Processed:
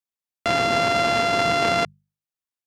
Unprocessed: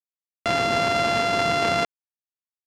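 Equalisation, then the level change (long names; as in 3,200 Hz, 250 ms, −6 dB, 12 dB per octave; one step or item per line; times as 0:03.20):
mains-hum notches 50/100/150/200 Hz
+1.5 dB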